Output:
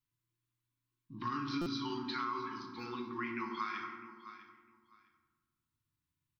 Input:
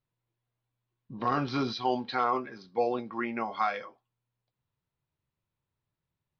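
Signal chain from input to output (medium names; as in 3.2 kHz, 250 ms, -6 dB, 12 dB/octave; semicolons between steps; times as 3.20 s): Chebyshev band-stop 360–1000 Hz, order 3; on a send: feedback delay 654 ms, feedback 19%, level -17 dB; on the sum: FDN reverb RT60 1.3 s, low-frequency decay 1.45×, high-frequency decay 0.5×, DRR 2 dB; compression 6:1, threshold -29 dBFS, peak gain reduction 8 dB; treble shelf 4.1 kHz +6.5 dB; hum notches 50/100/150/200/250/300 Hz; buffer glitch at 1.61 s, samples 256, times 8; trim -5 dB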